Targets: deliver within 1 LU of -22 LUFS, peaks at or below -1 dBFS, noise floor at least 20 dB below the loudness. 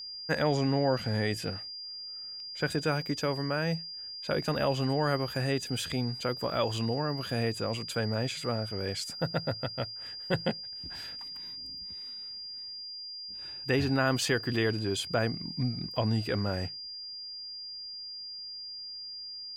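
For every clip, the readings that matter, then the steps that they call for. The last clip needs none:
steady tone 4.8 kHz; tone level -39 dBFS; loudness -32.0 LUFS; peak level -14.5 dBFS; loudness target -22.0 LUFS
-> band-stop 4.8 kHz, Q 30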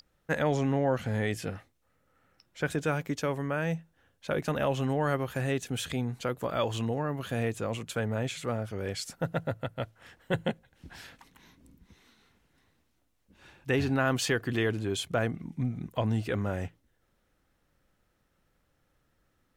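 steady tone not found; loudness -31.5 LUFS; peak level -15.0 dBFS; loudness target -22.0 LUFS
-> trim +9.5 dB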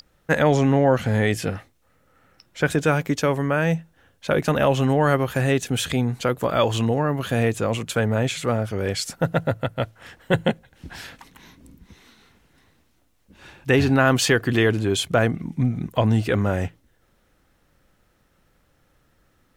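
loudness -22.0 LUFS; peak level -5.5 dBFS; noise floor -64 dBFS

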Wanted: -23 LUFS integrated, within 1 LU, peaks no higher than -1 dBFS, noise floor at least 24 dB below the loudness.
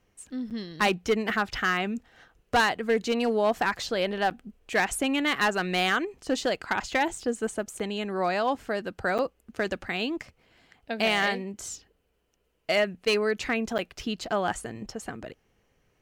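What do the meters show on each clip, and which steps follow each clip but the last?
clipped samples 0.5%; clipping level -17.0 dBFS; dropouts 4; longest dropout 7.9 ms; loudness -28.0 LUFS; peak level -17.0 dBFS; loudness target -23.0 LUFS
-> clip repair -17 dBFS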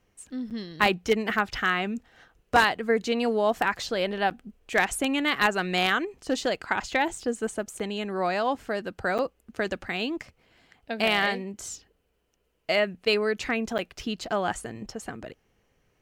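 clipped samples 0.0%; dropouts 4; longest dropout 7.9 ms
-> interpolate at 0.50/4.30/9.18/13.78 s, 7.9 ms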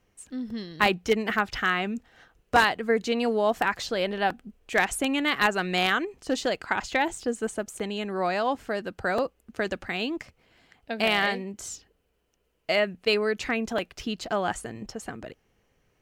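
dropouts 0; loudness -27.0 LUFS; peak level -8.0 dBFS; loudness target -23.0 LUFS
-> trim +4 dB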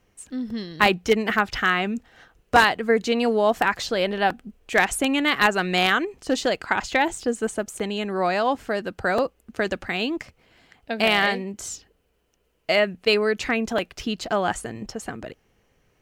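loudness -23.0 LUFS; peak level -4.0 dBFS; noise floor -67 dBFS

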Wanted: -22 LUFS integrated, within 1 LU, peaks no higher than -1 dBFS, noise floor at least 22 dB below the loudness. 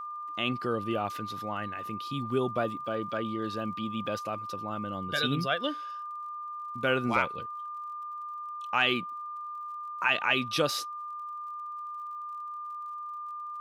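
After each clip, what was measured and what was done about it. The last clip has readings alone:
tick rate 49 per s; steady tone 1.2 kHz; tone level -36 dBFS; loudness -32.0 LUFS; peak level -11.5 dBFS; loudness target -22.0 LUFS
-> de-click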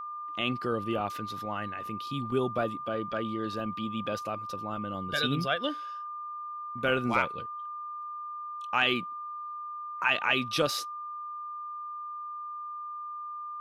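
tick rate 0.37 per s; steady tone 1.2 kHz; tone level -36 dBFS
-> band-stop 1.2 kHz, Q 30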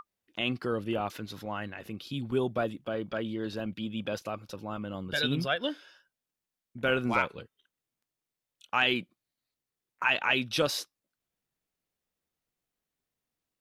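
steady tone not found; loudness -31.0 LUFS; peak level -11.5 dBFS; loudness target -22.0 LUFS
-> trim +9 dB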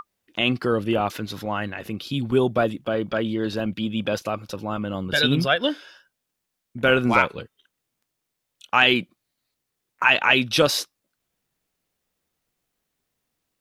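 loudness -22.5 LUFS; peak level -2.5 dBFS; noise floor -80 dBFS

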